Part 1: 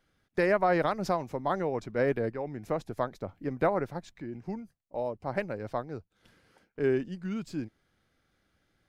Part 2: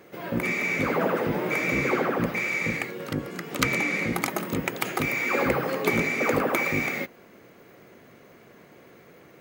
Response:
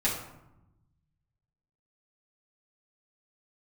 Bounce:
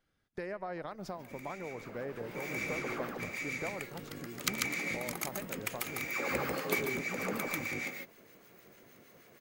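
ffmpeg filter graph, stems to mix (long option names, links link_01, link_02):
-filter_complex "[0:a]acompressor=threshold=-33dB:ratio=3,volume=-6.5dB,asplit=3[link_01][link_02][link_03];[link_02]volume=-20.5dB[link_04];[1:a]highshelf=frequency=3300:gain=10.5,acrossover=split=1200[link_05][link_06];[link_05]aeval=exprs='val(0)*(1-0.5/2+0.5/2*cos(2*PI*6.5*n/s))':channel_layout=same[link_07];[link_06]aeval=exprs='val(0)*(1-0.5/2-0.5/2*cos(2*PI*6.5*n/s))':channel_layout=same[link_08];[link_07][link_08]amix=inputs=2:normalize=0,adelay=850,volume=-7.5dB,afade=type=in:start_time=1.99:duration=0.42:silence=0.298538,asplit=2[link_09][link_10];[link_10]volume=-6.5dB[link_11];[link_03]apad=whole_len=452273[link_12];[link_09][link_12]sidechaincompress=threshold=-47dB:ratio=8:attack=22:release=831[link_13];[link_04][link_11]amix=inputs=2:normalize=0,aecho=0:1:142:1[link_14];[link_01][link_13][link_14]amix=inputs=3:normalize=0"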